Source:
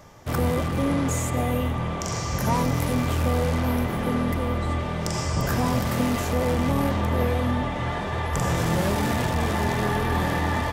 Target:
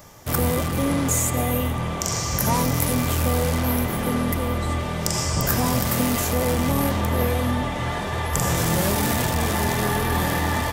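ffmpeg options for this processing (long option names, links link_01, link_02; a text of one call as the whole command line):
ffmpeg -i in.wav -af "aemphasis=mode=production:type=50kf,volume=1dB" out.wav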